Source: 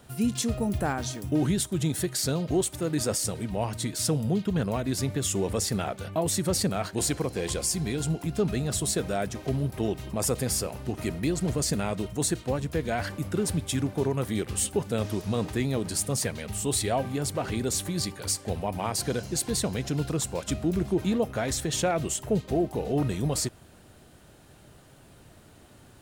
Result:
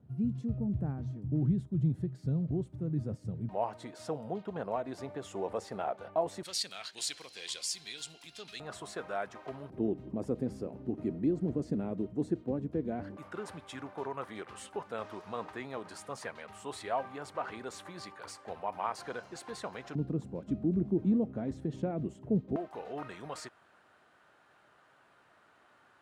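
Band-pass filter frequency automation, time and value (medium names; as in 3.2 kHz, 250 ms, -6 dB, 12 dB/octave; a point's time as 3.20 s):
band-pass filter, Q 1.6
140 Hz
from 3.49 s 770 Hz
from 6.43 s 3.8 kHz
from 8.60 s 1.1 kHz
from 9.70 s 280 Hz
from 13.17 s 1.1 kHz
from 19.95 s 230 Hz
from 22.56 s 1.3 kHz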